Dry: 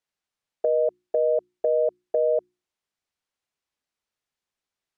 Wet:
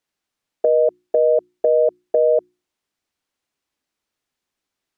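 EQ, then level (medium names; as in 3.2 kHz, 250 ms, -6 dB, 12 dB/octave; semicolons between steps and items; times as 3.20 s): peaking EQ 290 Hz +6 dB 0.68 oct; +5.5 dB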